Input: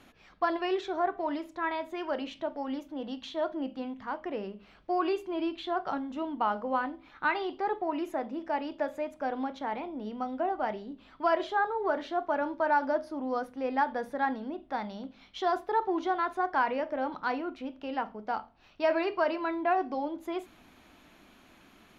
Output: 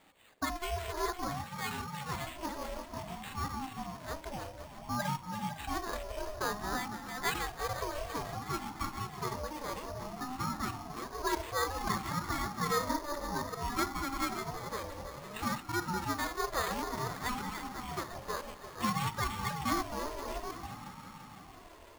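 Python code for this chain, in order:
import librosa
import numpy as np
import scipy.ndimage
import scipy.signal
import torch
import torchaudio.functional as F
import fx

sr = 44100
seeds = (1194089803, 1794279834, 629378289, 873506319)

y = fx.reverse_delay(x, sr, ms=387, wet_db=-6)
y = fx.lowpass(y, sr, hz=2700.0, slope=6)
y = fx.high_shelf(y, sr, hz=2000.0, db=10.5)
y = fx.notch(y, sr, hz=990.0, q=8.8)
y = fx.echo_heads(y, sr, ms=169, heads='second and third', feedback_pct=68, wet_db=-13.5)
y = np.repeat(y[::8], 8)[:len(y)]
y = fx.ring_lfo(y, sr, carrier_hz=420.0, swing_pct=30, hz=0.57)
y = y * librosa.db_to_amplitude(-4.0)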